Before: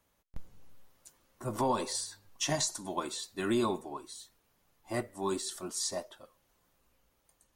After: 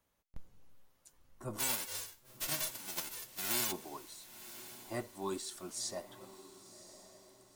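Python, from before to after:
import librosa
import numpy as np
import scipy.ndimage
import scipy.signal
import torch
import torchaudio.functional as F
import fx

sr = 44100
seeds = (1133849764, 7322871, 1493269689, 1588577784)

y = fx.envelope_flatten(x, sr, power=0.1, at=(1.58, 3.71), fade=0.02)
y = fx.echo_diffused(y, sr, ms=1045, feedback_pct=41, wet_db=-14.0)
y = y * 10.0 ** (-5.5 / 20.0)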